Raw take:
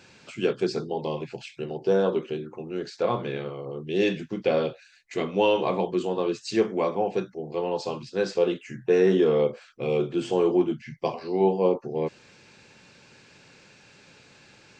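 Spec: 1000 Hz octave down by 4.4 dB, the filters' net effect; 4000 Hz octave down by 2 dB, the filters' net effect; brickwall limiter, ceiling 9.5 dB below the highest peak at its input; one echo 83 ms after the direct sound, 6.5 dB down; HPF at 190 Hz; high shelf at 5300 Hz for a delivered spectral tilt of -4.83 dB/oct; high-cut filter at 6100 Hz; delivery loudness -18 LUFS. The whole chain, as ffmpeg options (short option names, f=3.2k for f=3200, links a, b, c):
-af "highpass=190,lowpass=6.1k,equalizer=f=1k:t=o:g=-6,equalizer=f=4k:t=o:g=-4.5,highshelf=f=5.3k:g=7,alimiter=limit=-20.5dB:level=0:latency=1,aecho=1:1:83:0.473,volume=13dB"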